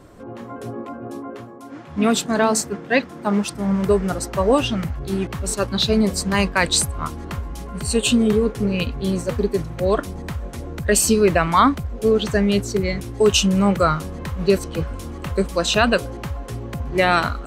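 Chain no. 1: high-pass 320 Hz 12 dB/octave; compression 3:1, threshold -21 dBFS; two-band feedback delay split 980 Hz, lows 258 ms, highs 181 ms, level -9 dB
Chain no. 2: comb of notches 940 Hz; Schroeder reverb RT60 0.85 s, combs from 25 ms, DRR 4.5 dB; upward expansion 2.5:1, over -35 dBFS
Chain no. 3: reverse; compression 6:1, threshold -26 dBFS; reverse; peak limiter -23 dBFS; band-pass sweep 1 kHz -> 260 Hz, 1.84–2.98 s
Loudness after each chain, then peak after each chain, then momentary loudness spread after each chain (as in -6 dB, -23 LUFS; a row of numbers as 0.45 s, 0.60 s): -26.0 LUFS, -24.5 LUFS, -40.0 LUFS; -8.5 dBFS, -4.0 dBFS, -24.0 dBFS; 12 LU, 19 LU, 8 LU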